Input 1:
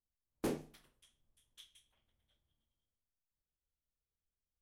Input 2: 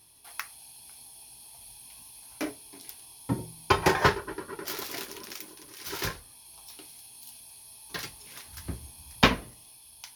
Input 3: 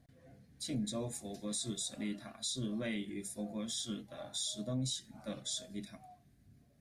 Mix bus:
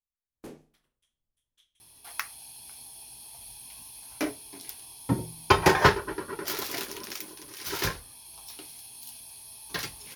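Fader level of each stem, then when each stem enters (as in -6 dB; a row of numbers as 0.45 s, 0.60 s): -8.0 dB, +3.0 dB, mute; 0.00 s, 1.80 s, mute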